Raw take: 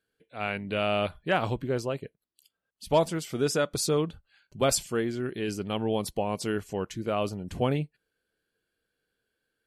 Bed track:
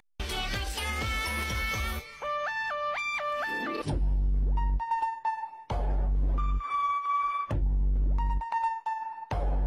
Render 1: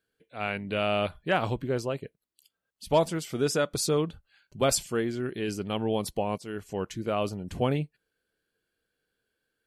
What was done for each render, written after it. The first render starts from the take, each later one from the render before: 6.38–6.81 fade in, from -15 dB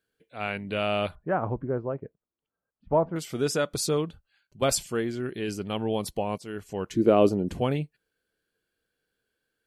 1.15–3.16 LPF 1400 Hz 24 dB/oct; 3.94–4.62 fade out quadratic, to -7 dB; 6.91–7.53 bell 340 Hz +14.5 dB 2 oct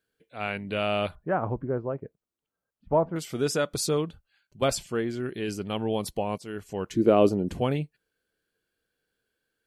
4.68–5.1 high shelf 5700 Hz -8.5 dB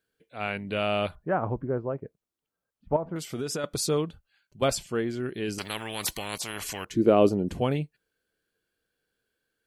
2.96–3.64 compressor, threshold -27 dBFS; 5.58–6.85 spectral compressor 4:1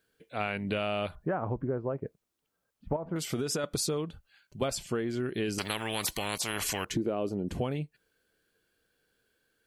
in parallel at -0.5 dB: limiter -18 dBFS, peak gain reduction 10.5 dB; on the sum: compressor 8:1, threshold -28 dBFS, peak gain reduction 16 dB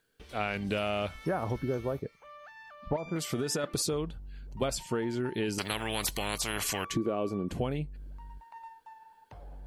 add bed track -18.5 dB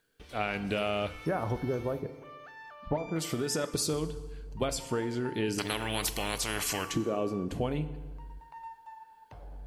FDN reverb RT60 1.4 s, low-frequency decay 0.9×, high-frequency decay 0.75×, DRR 10.5 dB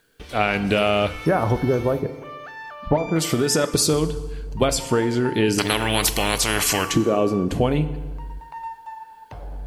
gain +11.5 dB

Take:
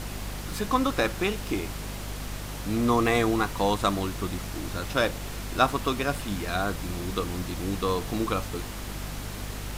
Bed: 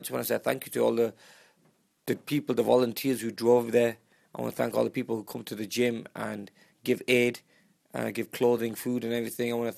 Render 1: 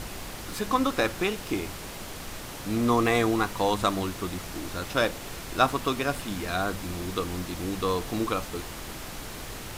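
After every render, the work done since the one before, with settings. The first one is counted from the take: de-hum 50 Hz, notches 5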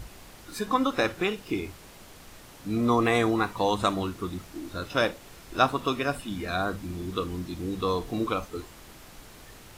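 noise print and reduce 10 dB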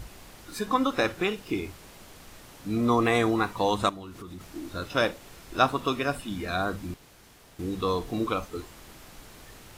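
3.89–4.41 compressor, threshold -38 dBFS; 6.94–7.59 room tone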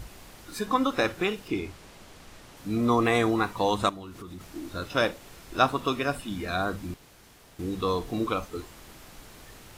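1.48–2.57 high shelf 12000 Hz -12 dB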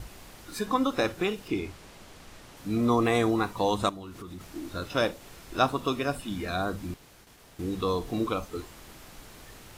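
gate with hold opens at -44 dBFS; dynamic EQ 1800 Hz, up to -4 dB, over -36 dBFS, Q 0.76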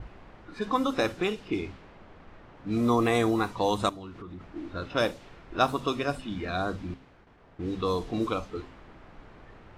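de-hum 65.46 Hz, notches 4; low-pass opened by the level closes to 1500 Hz, open at -21.5 dBFS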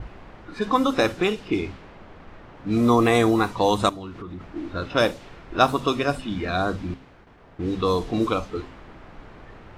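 gain +6 dB

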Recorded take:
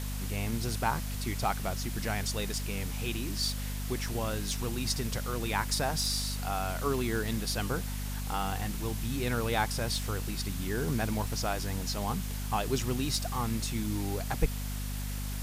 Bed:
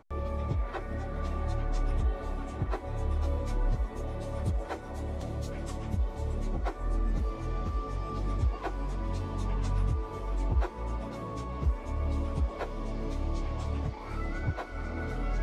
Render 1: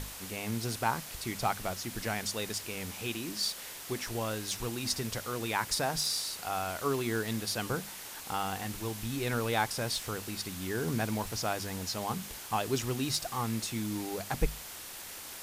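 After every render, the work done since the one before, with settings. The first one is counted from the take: notches 50/100/150/200/250 Hz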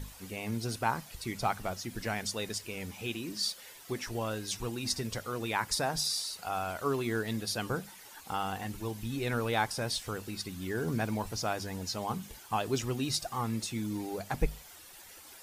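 denoiser 11 dB, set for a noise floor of -45 dBFS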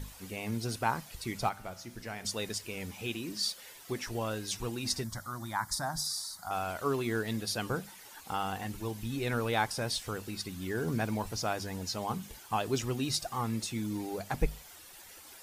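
1.49–2.25 resonator 60 Hz, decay 1.1 s; 5.04–6.51 fixed phaser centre 1100 Hz, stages 4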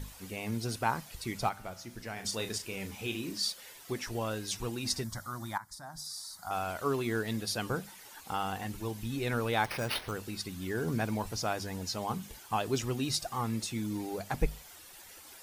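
2.13–3.38 doubler 36 ms -8 dB; 5.58–6.5 fade in quadratic, from -14 dB; 9.64–10.12 careless resampling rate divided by 6×, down none, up hold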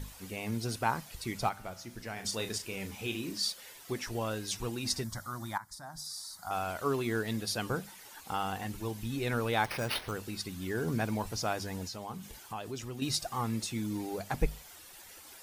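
11.87–13.02 compressor 2:1, threshold -42 dBFS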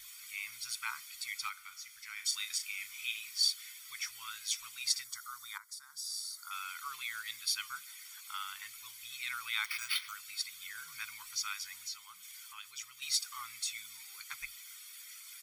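inverse Chebyshev high-pass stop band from 750 Hz, stop band 40 dB; comb 0.9 ms, depth 70%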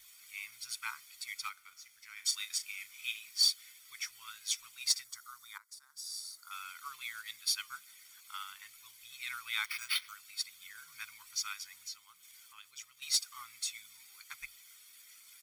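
sample leveller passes 1; upward expander 1.5:1, over -42 dBFS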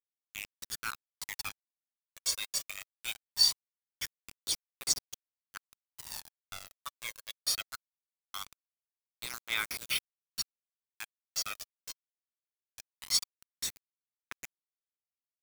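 bit-crush 6-bit; phaser 0.21 Hz, delay 1.9 ms, feedback 50%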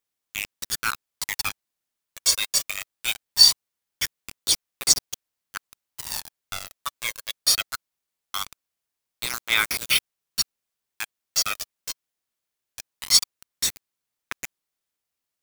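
gain +11.5 dB; limiter -2 dBFS, peak gain reduction 1 dB

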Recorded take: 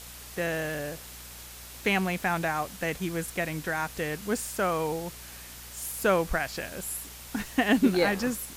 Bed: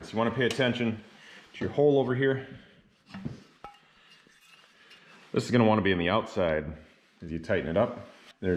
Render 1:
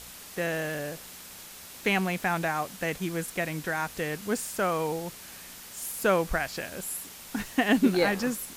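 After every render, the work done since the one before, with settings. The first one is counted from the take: de-hum 60 Hz, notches 2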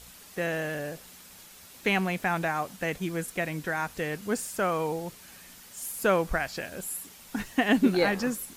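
denoiser 6 dB, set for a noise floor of -46 dBFS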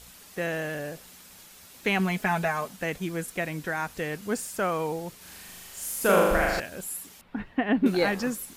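1.99–2.68 comb 4.7 ms, depth 70%; 5.17–6.6 flutter echo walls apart 6.8 m, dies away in 1.3 s; 7.21–7.86 air absorption 470 m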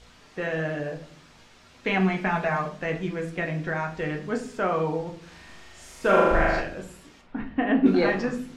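air absorption 140 m; shoebox room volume 52 m³, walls mixed, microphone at 0.49 m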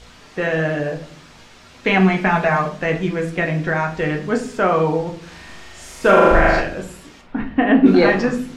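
gain +8.5 dB; limiter -2 dBFS, peak gain reduction 3 dB

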